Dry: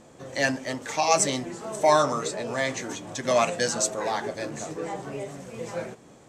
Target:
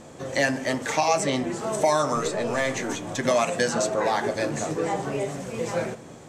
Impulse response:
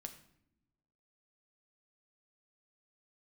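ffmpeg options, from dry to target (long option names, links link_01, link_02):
-filter_complex "[0:a]acrossover=split=3400|6800[link_01][link_02][link_03];[link_01]acompressor=threshold=-26dB:ratio=4[link_04];[link_02]acompressor=threshold=-48dB:ratio=4[link_05];[link_03]acompressor=threshold=-44dB:ratio=4[link_06];[link_04][link_05][link_06]amix=inputs=3:normalize=0,asettb=1/sr,asplit=3[link_07][link_08][link_09];[link_07]atrim=end=2.154[link_10];[link_08]atrim=start=2.15:end=3.19,asetpts=PTS-STARTPTS,afade=type=in:duration=0.004:curve=qsin,afade=type=out:start_time=1.036:duration=0.004:curve=qsin,aeval=exprs='(tanh(10*val(0)+0.35)-tanh(0.35))/10':channel_layout=same[link_11];[link_09]atrim=start=3.186[link_12];[link_10][link_11]acrossfade=duration=0.004:curve1=hsin:curve2=qsin[link_13];[link_13][link_12]acrossfade=duration=0.004:curve1=qsin:curve2=hsin,asplit=2[link_14][link_15];[1:a]atrim=start_sample=2205,asetrate=26460,aresample=44100[link_16];[link_15][link_16]afir=irnorm=-1:irlink=0,volume=-6dB[link_17];[link_14][link_17]amix=inputs=2:normalize=0,volume=4dB"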